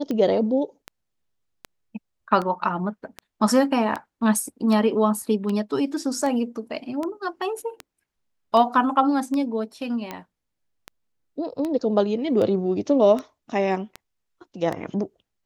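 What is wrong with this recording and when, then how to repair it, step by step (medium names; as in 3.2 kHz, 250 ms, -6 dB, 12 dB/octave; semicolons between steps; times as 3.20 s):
tick 78 rpm -16 dBFS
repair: de-click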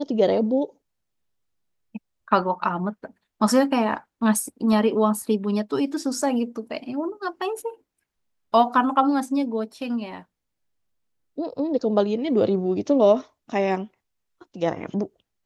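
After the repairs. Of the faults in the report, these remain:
nothing left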